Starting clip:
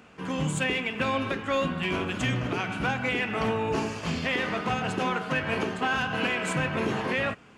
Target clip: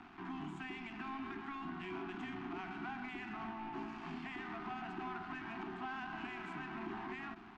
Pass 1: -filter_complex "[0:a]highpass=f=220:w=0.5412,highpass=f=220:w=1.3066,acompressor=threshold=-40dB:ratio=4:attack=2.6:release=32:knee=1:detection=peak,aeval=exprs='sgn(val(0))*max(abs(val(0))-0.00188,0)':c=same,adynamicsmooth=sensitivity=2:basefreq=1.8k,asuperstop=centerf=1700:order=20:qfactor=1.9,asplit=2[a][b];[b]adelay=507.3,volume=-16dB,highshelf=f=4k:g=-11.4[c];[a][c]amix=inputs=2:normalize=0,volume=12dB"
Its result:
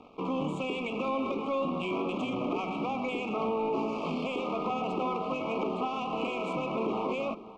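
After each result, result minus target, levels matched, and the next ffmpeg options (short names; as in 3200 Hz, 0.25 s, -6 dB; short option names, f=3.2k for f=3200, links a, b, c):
compressor: peak gain reduction -8.5 dB; 500 Hz band +7.0 dB
-filter_complex "[0:a]highpass=f=220:w=0.5412,highpass=f=220:w=1.3066,acompressor=threshold=-51.5dB:ratio=4:attack=2.6:release=32:knee=1:detection=peak,aeval=exprs='sgn(val(0))*max(abs(val(0))-0.00188,0)':c=same,adynamicsmooth=sensitivity=2:basefreq=1.8k,asuperstop=centerf=1700:order=20:qfactor=1.9,asplit=2[a][b];[b]adelay=507.3,volume=-16dB,highshelf=f=4k:g=-11.4[c];[a][c]amix=inputs=2:normalize=0,volume=12dB"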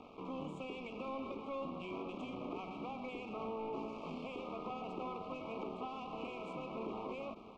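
500 Hz band +7.5 dB
-filter_complex "[0:a]highpass=f=220:w=0.5412,highpass=f=220:w=1.3066,acompressor=threshold=-51.5dB:ratio=4:attack=2.6:release=32:knee=1:detection=peak,aeval=exprs='sgn(val(0))*max(abs(val(0))-0.00188,0)':c=same,adynamicsmooth=sensitivity=2:basefreq=1.8k,asuperstop=centerf=520:order=20:qfactor=1.9,asplit=2[a][b];[b]adelay=507.3,volume=-16dB,highshelf=f=4k:g=-11.4[c];[a][c]amix=inputs=2:normalize=0,volume=12dB"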